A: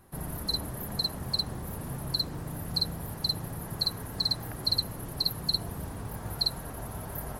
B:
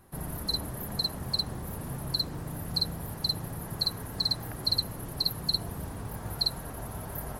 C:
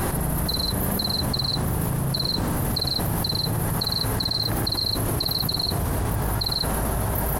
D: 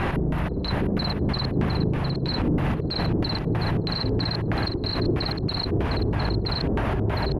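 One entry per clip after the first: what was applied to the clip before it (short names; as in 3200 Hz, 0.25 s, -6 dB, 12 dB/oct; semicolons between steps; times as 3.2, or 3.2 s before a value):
nothing audible
on a send: loudspeakers at several distances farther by 36 m -5 dB, 49 m -2 dB; on the sum: fast leveller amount 100%; gain -1 dB
LFO low-pass square 3.1 Hz 380–2600 Hz; echo 0.707 s -7 dB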